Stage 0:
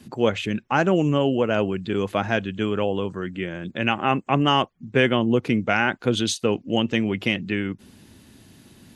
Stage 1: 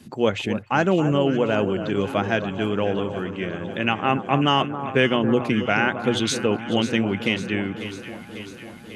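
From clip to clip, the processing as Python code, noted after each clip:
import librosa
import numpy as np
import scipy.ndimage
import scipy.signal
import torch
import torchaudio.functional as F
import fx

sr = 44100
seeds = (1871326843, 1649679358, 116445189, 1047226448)

y = fx.hum_notches(x, sr, base_hz=60, count=2)
y = fx.echo_alternate(y, sr, ms=273, hz=1400.0, feedback_pct=80, wet_db=-10)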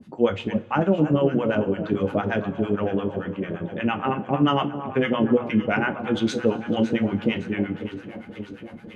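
y = fx.lowpass(x, sr, hz=1200.0, slope=6)
y = fx.harmonic_tremolo(y, sr, hz=8.8, depth_pct=100, crossover_hz=730.0)
y = fx.rev_double_slope(y, sr, seeds[0], early_s=0.21, late_s=2.2, knee_db=-22, drr_db=5.5)
y = y * 10.0 ** (3.5 / 20.0)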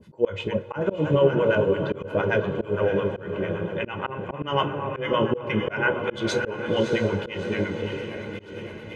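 y = x + 0.7 * np.pad(x, (int(2.0 * sr / 1000.0), 0))[:len(x)]
y = fx.echo_diffused(y, sr, ms=631, feedback_pct=54, wet_db=-10.0)
y = fx.auto_swell(y, sr, attack_ms=177.0)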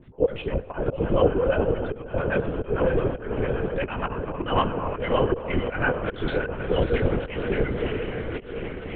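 y = fx.lowpass(x, sr, hz=2400.0, slope=6)
y = fx.rider(y, sr, range_db=5, speed_s=2.0)
y = fx.lpc_vocoder(y, sr, seeds[1], excitation='whisper', order=10)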